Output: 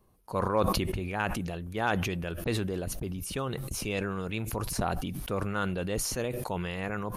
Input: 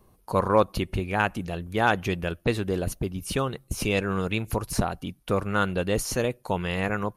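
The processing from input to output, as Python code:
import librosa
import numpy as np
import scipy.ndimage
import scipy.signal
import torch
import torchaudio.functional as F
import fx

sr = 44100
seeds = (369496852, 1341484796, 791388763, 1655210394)

y = fx.sustainer(x, sr, db_per_s=23.0)
y = y * 10.0 ** (-7.5 / 20.0)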